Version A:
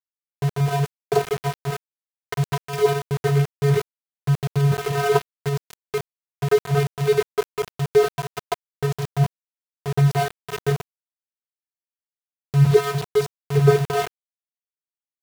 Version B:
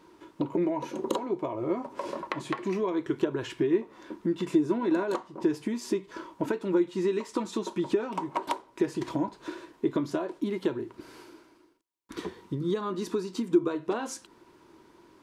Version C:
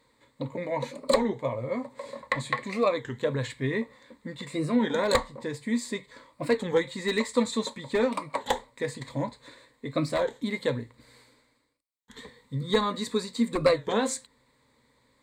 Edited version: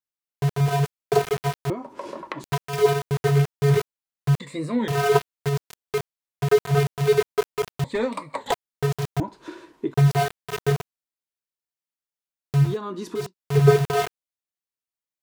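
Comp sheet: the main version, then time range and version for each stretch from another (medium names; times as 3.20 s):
A
1.70–2.44 s: from B
4.40–4.88 s: from C
7.84–8.52 s: from C
9.20–9.94 s: from B
12.66–13.22 s: from B, crossfade 0.24 s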